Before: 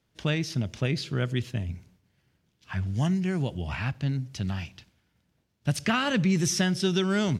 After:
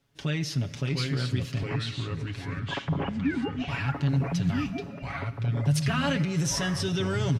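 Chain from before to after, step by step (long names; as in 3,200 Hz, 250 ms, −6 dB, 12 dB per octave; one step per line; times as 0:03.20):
0:01.63–0:03.68: three sine waves on the formant tracks
brickwall limiter −22 dBFS, peak gain reduction 8 dB
delay with pitch and tempo change per echo 652 ms, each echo −3 semitones, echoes 3
comb filter 7.2 ms, depth 69%
convolution reverb RT60 5.2 s, pre-delay 15 ms, DRR 14.5 dB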